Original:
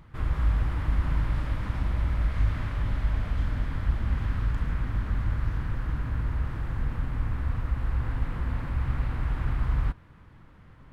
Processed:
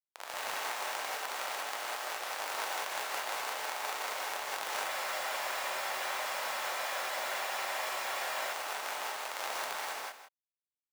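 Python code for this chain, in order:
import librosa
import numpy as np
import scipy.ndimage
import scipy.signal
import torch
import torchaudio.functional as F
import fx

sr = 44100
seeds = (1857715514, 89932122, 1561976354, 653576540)

p1 = fx.tracing_dist(x, sr, depth_ms=0.41)
p2 = 10.0 ** (-23.0 / 20.0) * np.tanh(p1 / 10.0 ** (-23.0 / 20.0))
p3 = p1 + (p2 * librosa.db_to_amplitude(-8.5))
p4 = fx.high_shelf(p3, sr, hz=3300.0, db=5.0)
p5 = fx.schmitt(p4, sr, flips_db=-25.0)
p6 = p5 * np.sin(2.0 * np.pi * 78.0 * np.arange(len(p5)) / sr)
p7 = scipy.signal.sosfilt(scipy.signal.butter(4, 690.0, 'highpass', fs=sr, output='sos'), p6)
p8 = fx.over_compress(p7, sr, threshold_db=-44.0, ratio=-0.5)
p9 = p8 + fx.echo_single(p8, sr, ms=162, db=-11.5, dry=0)
p10 = fx.rev_gated(p9, sr, seeds[0], gate_ms=220, shape='rising', drr_db=-6.5)
y = fx.spec_freeze(p10, sr, seeds[1], at_s=4.91, hold_s=3.62)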